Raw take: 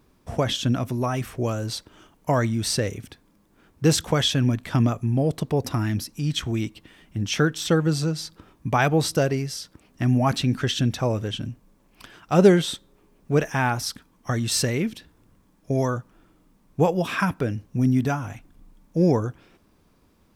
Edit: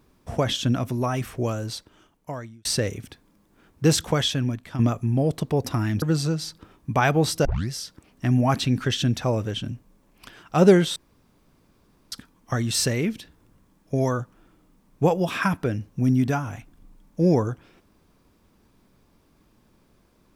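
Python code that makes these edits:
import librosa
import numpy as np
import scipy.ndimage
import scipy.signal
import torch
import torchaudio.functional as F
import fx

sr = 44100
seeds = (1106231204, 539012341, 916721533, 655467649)

y = fx.edit(x, sr, fx.fade_out_span(start_s=1.4, length_s=1.25),
    fx.fade_out_to(start_s=4.05, length_s=0.74, floor_db=-10.5),
    fx.cut(start_s=6.02, length_s=1.77),
    fx.tape_start(start_s=9.22, length_s=0.25),
    fx.room_tone_fill(start_s=12.73, length_s=1.16), tone=tone)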